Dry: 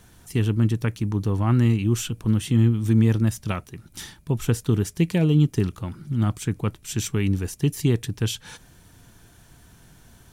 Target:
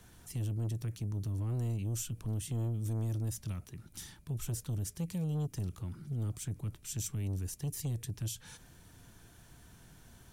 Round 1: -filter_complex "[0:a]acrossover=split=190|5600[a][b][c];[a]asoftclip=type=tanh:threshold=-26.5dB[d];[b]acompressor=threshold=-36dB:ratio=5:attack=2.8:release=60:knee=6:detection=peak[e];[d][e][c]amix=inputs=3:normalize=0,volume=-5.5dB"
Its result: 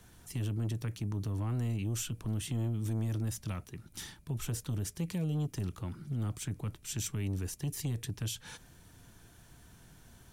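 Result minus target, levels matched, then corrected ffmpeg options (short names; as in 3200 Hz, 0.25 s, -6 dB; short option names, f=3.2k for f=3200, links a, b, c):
compressor: peak gain reduction -9 dB
-filter_complex "[0:a]acrossover=split=190|5600[a][b][c];[a]asoftclip=type=tanh:threshold=-26.5dB[d];[b]acompressor=threshold=-47.5dB:ratio=5:attack=2.8:release=60:knee=6:detection=peak[e];[d][e][c]amix=inputs=3:normalize=0,volume=-5.5dB"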